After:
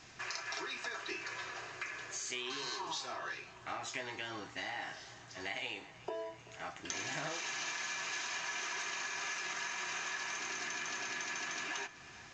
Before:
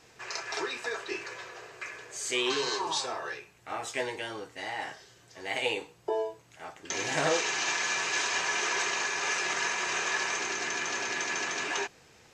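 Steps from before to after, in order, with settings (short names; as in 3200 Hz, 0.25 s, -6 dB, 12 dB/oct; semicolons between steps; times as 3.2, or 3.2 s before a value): bell 470 Hz -12 dB 0.5 oct; notch 880 Hz, Q 16; compressor 5:1, threshold -41 dBFS, peak gain reduction 14.5 dB; tape echo 0.382 s, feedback 85%, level -18 dB, low-pass 4700 Hz; gain +2.5 dB; µ-law 128 kbps 16000 Hz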